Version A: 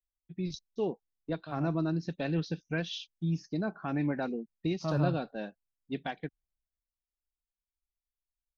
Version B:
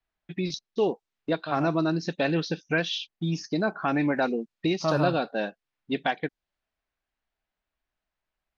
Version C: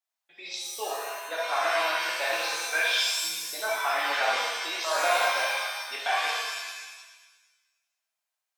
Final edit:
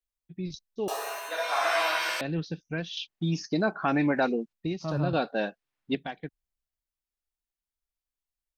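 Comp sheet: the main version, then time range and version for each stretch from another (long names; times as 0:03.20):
A
0:00.88–0:02.21: punch in from C
0:02.97–0:04.53: punch in from B
0:05.13–0:05.95: punch in from B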